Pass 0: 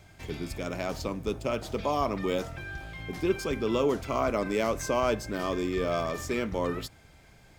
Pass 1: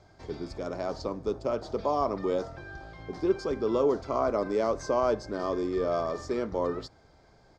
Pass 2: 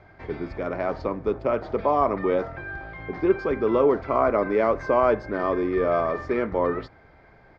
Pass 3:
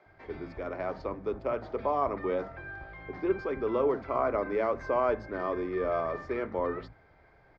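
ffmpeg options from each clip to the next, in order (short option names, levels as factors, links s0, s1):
-af "firequalizer=gain_entry='entry(170,0);entry(390,7);entry(1100,5);entry(2600,-10);entry(4600,4);entry(13000,-28)':delay=0.05:min_phase=1,volume=0.562"
-af "lowpass=f=2100:t=q:w=2.4,volume=1.78"
-filter_complex "[0:a]acrossover=split=210[s0][s1];[s0]adelay=60[s2];[s2][s1]amix=inputs=2:normalize=0,volume=0.447"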